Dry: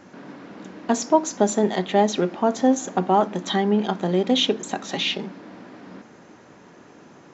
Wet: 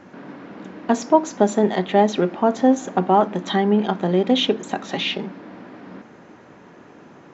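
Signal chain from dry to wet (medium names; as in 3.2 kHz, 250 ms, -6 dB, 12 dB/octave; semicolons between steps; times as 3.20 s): tone controls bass 0 dB, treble -9 dB; trim +2.5 dB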